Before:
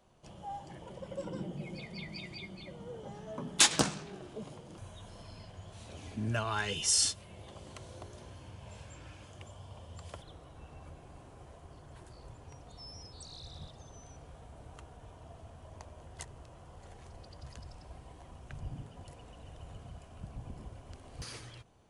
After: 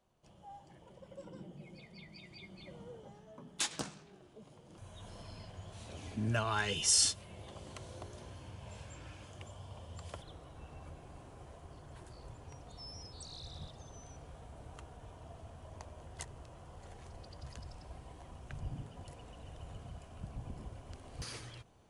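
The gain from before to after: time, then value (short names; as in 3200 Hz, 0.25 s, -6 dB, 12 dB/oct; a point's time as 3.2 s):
2.2 s -10 dB
2.77 s -3 dB
3.32 s -12 dB
4.42 s -12 dB
5.08 s 0 dB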